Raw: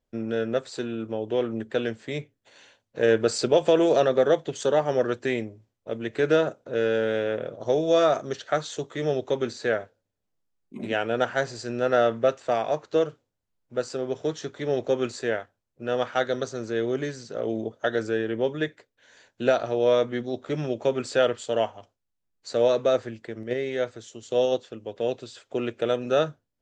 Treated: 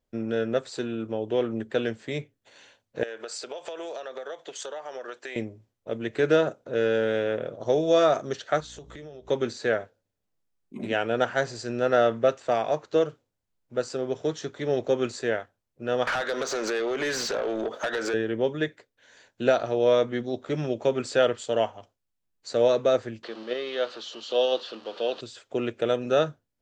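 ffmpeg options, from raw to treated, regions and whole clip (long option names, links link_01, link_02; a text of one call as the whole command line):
ffmpeg -i in.wav -filter_complex "[0:a]asettb=1/sr,asplit=3[link_01][link_02][link_03];[link_01]atrim=end=3.034[link_04];[link_02]atrim=start=3.03:end=5.36,asetpts=PTS-STARTPTS,afade=type=in:duration=0.004:curve=qsin,afade=type=out:start_time=2.326:duration=0.004:curve=qsin,highpass=630,acompressor=threshold=-32dB:ratio=16:attack=3.2:release=140:knee=1:detection=peak[link_05];[link_03]atrim=start=5.356[link_06];[link_04][link_05]acrossfade=duration=0.004:curve1=hsin:curve2=qsin[link_07];[link_07][link_06]acrossfade=duration=0.004:curve1=qsin:curve2=hsin,asettb=1/sr,asplit=3[link_08][link_09][link_10];[link_08]atrim=end=8.604[link_11];[link_09]atrim=start=8.6:end=9.29,asetpts=PTS-STARTPTS,afade=type=in:duration=0.004:curve=qsin,afade=type=out:start_time=0.686:duration=0.004:curve=qsin,asplit=2[link_12][link_13];[link_13]adelay=13,volume=-13dB[link_14];[link_12][link_14]amix=inputs=2:normalize=0,atrim=end_sample=30429,aeval=exprs='val(0)+0.00501*(sin(2*PI*60*n/s)+sin(2*PI*2*60*n/s)/2+sin(2*PI*3*60*n/s)/3+sin(2*PI*4*60*n/s)/4+sin(2*PI*5*60*n/s)/5)':channel_layout=same,acompressor=threshold=-39dB:ratio=12:attack=3.2:release=140:knee=1:detection=peak[link_15];[link_10]atrim=start=9.286[link_16];[link_11][link_15]acrossfade=duration=0.004:curve1=hsin:curve2=qsin[link_17];[link_17][link_16]acrossfade=duration=0.004:curve1=qsin:curve2=hsin,asettb=1/sr,asplit=3[link_18][link_19][link_20];[link_18]atrim=end=16.074[link_21];[link_19]atrim=start=16.07:end=18.14,asetpts=PTS-STARTPTS,afade=type=in:duration=0.004:curve=qsin,afade=type=out:start_time=2.066:duration=0.004:curve=qsin,highpass=frequency=370:poles=1,acompressor=threshold=-40dB:ratio=16:attack=3.2:release=140:knee=1:detection=peak,asplit=2[link_22][link_23];[link_23]highpass=frequency=720:poles=1,volume=32dB,asoftclip=type=tanh:threshold=-17dB[link_24];[link_22][link_24]amix=inputs=2:normalize=0,lowpass=frequency=3600:poles=1,volume=-6dB[link_25];[link_20]atrim=start=18.136[link_26];[link_21][link_25]acrossfade=duration=0.004:curve1=hsin:curve2=qsin[link_27];[link_27][link_26]acrossfade=duration=0.004:curve1=qsin:curve2=hsin,asettb=1/sr,asplit=3[link_28][link_29][link_30];[link_28]atrim=end=23.234[link_31];[link_29]atrim=start=23.23:end=25.21,asetpts=PTS-STARTPTS,afade=type=in:duration=0.004:curve=qsin,afade=type=out:start_time=1.976:duration=0.004:curve=qsin,aeval=exprs='val(0)+0.5*0.01*sgn(val(0))':channel_layout=same,highpass=frequency=240:width=0.5412,highpass=frequency=240:width=1.3066,equalizer=frequency=260:width_type=q:width=4:gain=-6,equalizer=frequency=400:width_type=q:width=4:gain=-5,equalizer=frequency=1200:width_type=q:width=4:gain=5,equalizer=frequency=2100:width_type=q:width=4:gain=-7,equalizer=frequency=3000:width_type=q:width=4:gain=8,equalizer=frequency=4300:width_type=q:width=4:gain=8,lowpass=frequency=5300:width=0.5412,lowpass=frequency=5300:width=1.3066[link_32];[link_30]atrim=start=25.206[link_33];[link_31][link_32]acrossfade=duration=0.004:curve1=hsin:curve2=qsin[link_34];[link_34][link_33]acrossfade=duration=0.004:curve1=qsin:curve2=hsin" out.wav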